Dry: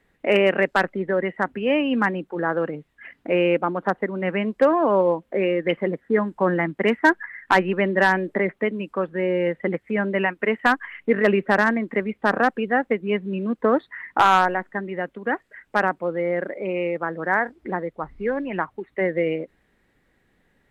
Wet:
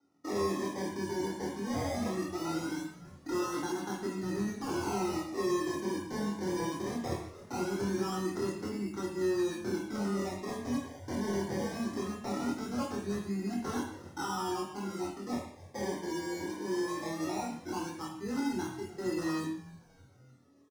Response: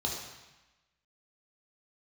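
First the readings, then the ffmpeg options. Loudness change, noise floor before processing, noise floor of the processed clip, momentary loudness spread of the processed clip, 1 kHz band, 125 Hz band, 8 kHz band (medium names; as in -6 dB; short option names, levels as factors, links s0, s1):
-13.0 dB, -67 dBFS, -57 dBFS, 6 LU, -15.5 dB, -8.0 dB, no reading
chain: -filter_complex "[0:a]equalizer=f=85:w=1.2:g=7,acrossover=split=420|2000[s0][s1][s2];[s1]alimiter=limit=0.133:level=0:latency=1[s3];[s2]acompressor=threshold=0.00631:ratio=6[s4];[s0][s3][s4]amix=inputs=3:normalize=0,asplit=3[s5][s6][s7];[s5]bandpass=f=300:t=q:w=8,volume=1[s8];[s6]bandpass=f=870:t=q:w=8,volume=0.501[s9];[s7]bandpass=f=2240:t=q:w=8,volume=0.355[s10];[s8][s9][s10]amix=inputs=3:normalize=0,aresample=8000,aeval=exprs='0.0237*(abs(mod(val(0)/0.0237+3,4)-2)-1)':c=same,aresample=44100,acrusher=samples=26:mix=1:aa=0.000001:lfo=1:lforange=15.6:lforate=0.2,asoftclip=type=tanh:threshold=0.0178,asplit=2[s11][s12];[s12]adelay=25,volume=0.75[s13];[s11][s13]amix=inputs=2:normalize=0,asplit=6[s14][s15][s16][s17][s18][s19];[s15]adelay=302,afreqshift=-150,volume=0.0944[s20];[s16]adelay=604,afreqshift=-300,volume=0.055[s21];[s17]adelay=906,afreqshift=-450,volume=0.0316[s22];[s18]adelay=1208,afreqshift=-600,volume=0.0184[s23];[s19]adelay=1510,afreqshift=-750,volume=0.0107[s24];[s14][s20][s21][s22][s23][s24]amix=inputs=6:normalize=0[s25];[1:a]atrim=start_sample=2205,afade=t=out:st=0.37:d=0.01,atrim=end_sample=16758,asetrate=66150,aresample=44100[s26];[s25][s26]afir=irnorm=-1:irlink=0"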